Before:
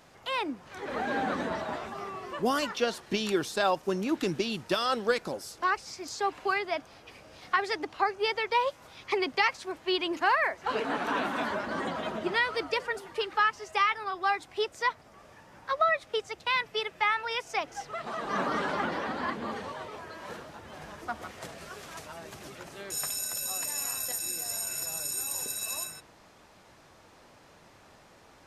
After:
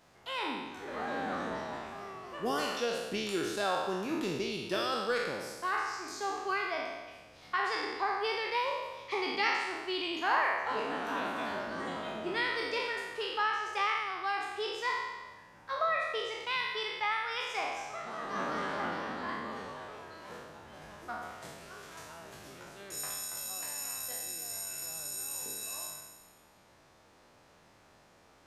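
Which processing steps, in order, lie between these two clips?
spectral trails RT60 1.25 s; gain -8 dB

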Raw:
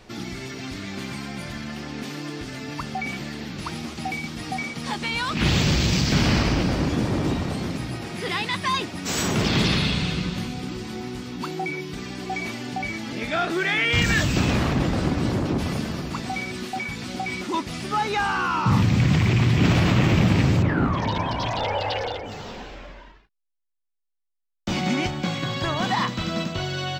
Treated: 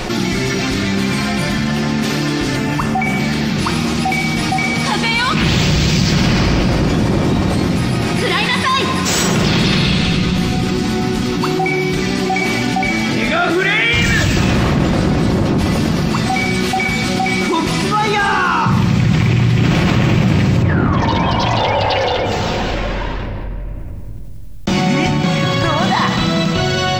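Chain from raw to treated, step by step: 2.56–3.2 bell 4300 Hz -8.5 dB 0.89 oct; shoebox room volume 2400 m³, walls mixed, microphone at 0.94 m; fast leveller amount 70%; gain +1.5 dB

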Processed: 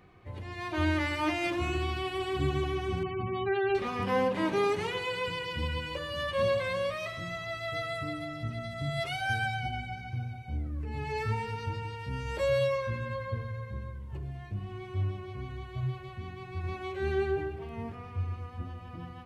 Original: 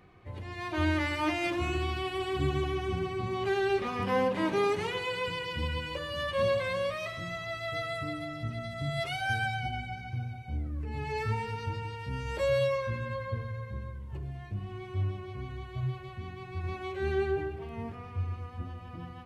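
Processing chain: 3.03–3.75 spectral gate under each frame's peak -25 dB strong

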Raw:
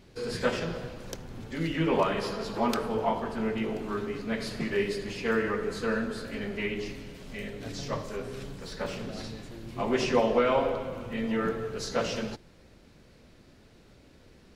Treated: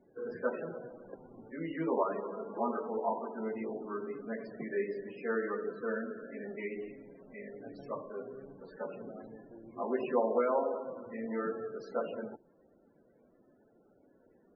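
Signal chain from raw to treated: three-band isolator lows -18 dB, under 210 Hz, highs -12 dB, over 2100 Hz; loudest bins only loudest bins 32; gain -4.5 dB

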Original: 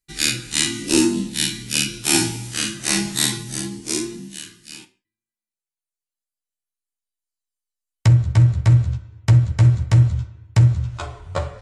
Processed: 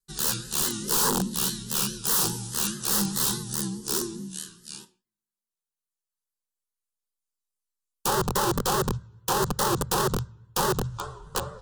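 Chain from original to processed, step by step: wrapped overs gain 16 dB; fixed phaser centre 440 Hz, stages 8; vibrato 4.8 Hz 85 cents

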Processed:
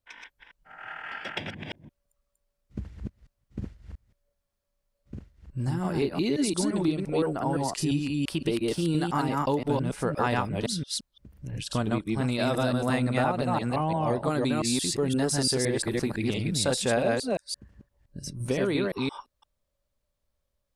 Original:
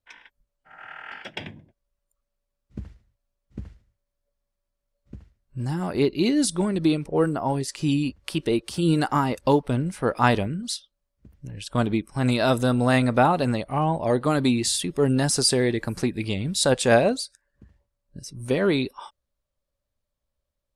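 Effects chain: reverse delay 0.172 s, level -1 dB; compressor 2.5:1, threshold -26 dBFS, peak gain reduction 10 dB

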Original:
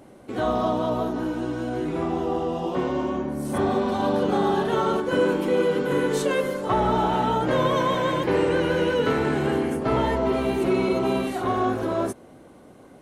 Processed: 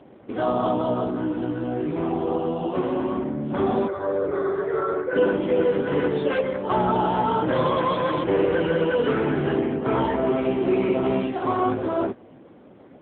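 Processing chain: 3.87–5.16 fixed phaser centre 840 Hz, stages 6; gain +2 dB; AMR-NB 6.7 kbps 8000 Hz

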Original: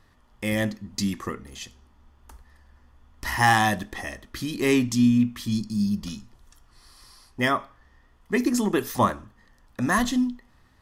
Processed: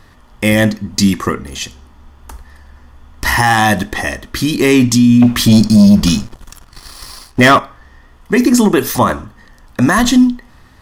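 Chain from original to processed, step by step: 5.22–7.59 sample leveller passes 2; maximiser +16 dB; gain -1 dB

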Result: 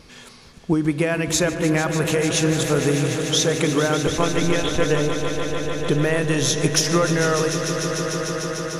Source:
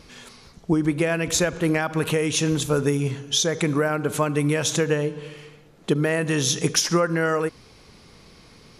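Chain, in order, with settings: 4.06–4.85 monotone LPC vocoder at 8 kHz 170 Hz; swelling echo 0.149 s, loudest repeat 5, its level -12 dB; gain +1 dB

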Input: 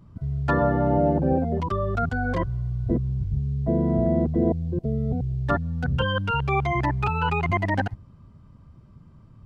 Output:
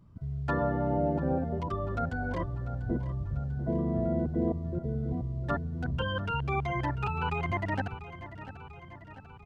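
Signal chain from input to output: feedback echo 0.693 s, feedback 59%, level -14 dB; gain -7.5 dB

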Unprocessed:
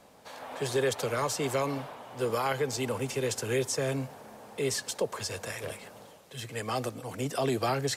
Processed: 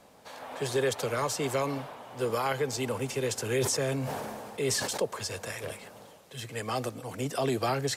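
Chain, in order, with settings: 3.34–5.05 sustainer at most 26 dB/s

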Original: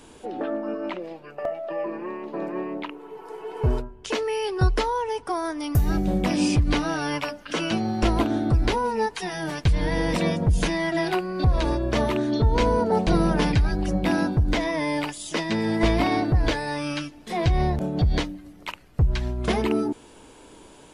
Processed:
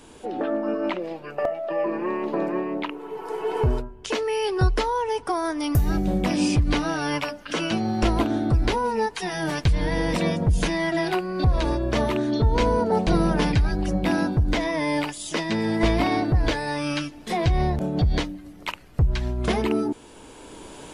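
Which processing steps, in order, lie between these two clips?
recorder AGC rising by 7.8 dB/s

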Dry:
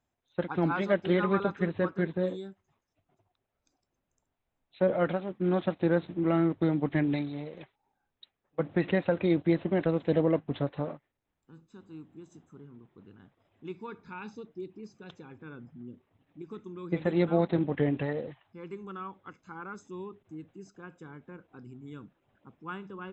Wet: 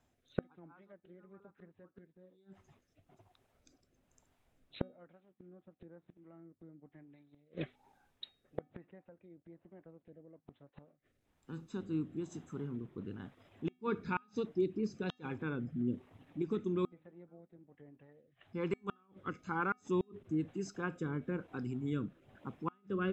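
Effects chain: rotary speaker horn 1.1 Hz; treble ducked by the level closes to 1600 Hz, closed at -24.5 dBFS; flipped gate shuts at -33 dBFS, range -39 dB; resonator 250 Hz, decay 0.4 s, harmonics odd, mix 40%; gain +14.5 dB

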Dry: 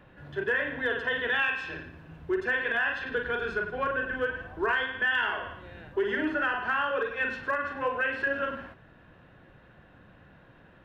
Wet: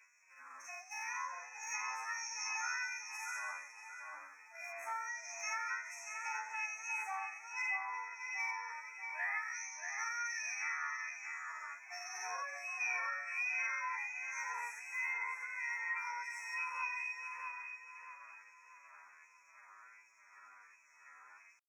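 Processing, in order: bell 530 Hz +6 dB 1.6 oct; chorus 1 Hz, delay 18.5 ms, depth 6 ms; LFO high-pass sine 2.7 Hz 710–1800 Hz; FFT band-reject 1400–2900 Hz; compressor 4:1, threshold -37 dBFS, peak gain reduction 13.5 dB; pitch shift +10.5 st; high shelf 2100 Hz +7.5 dB; on a send: darkening echo 0.318 s, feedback 45%, low-pass 2500 Hz, level -3.5 dB; on the sum: time stretch by phase-locked vocoder 2×; gain -4 dB

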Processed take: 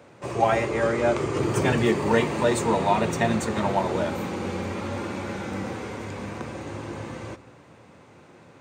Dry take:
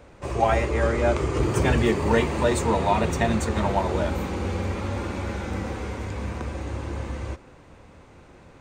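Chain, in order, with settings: HPF 110 Hz 24 dB/oct; reverb RT60 1.3 s, pre-delay 4 ms, DRR 18 dB

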